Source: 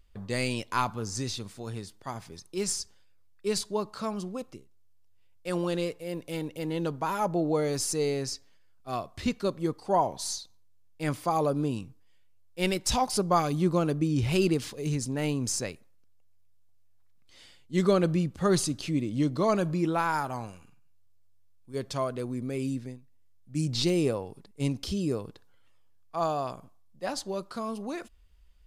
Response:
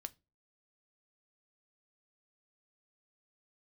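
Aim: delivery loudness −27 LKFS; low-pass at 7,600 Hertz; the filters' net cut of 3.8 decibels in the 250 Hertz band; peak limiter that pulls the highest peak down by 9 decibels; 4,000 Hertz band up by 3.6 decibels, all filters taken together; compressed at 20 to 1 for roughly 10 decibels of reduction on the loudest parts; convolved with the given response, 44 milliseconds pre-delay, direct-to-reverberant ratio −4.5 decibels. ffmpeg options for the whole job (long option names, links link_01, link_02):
-filter_complex "[0:a]lowpass=7600,equalizer=frequency=250:width_type=o:gain=-6,equalizer=frequency=4000:width_type=o:gain=5,acompressor=threshold=-29dB:ratio=20,alimiter=level_in=3.5dB:limit=-24dB:level=0:latency=1,volume=-3.5dB,asplit=2[link_01][link_02];[1:a]atrim=start_sample=2205,adelay=44[link_03];[link_02][link_03]afir=irnorm=-1:irlink=0,volume=9dB[link_04];[link_01][link_04]amix=inputs=2:normalize=0,volume=5dB"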